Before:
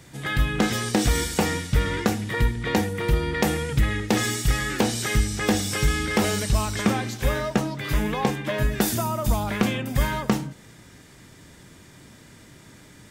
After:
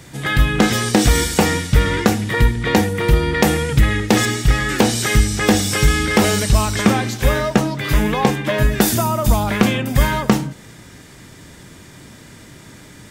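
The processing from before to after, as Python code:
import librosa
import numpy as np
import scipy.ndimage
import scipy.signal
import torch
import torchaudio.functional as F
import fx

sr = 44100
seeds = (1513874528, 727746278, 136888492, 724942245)

y = fx.high_shelf(x, sr, hz=5900.0, db=-10.5, at=(4.25, 4.69))
y = y * librosa.db_to_amplitude(7.5)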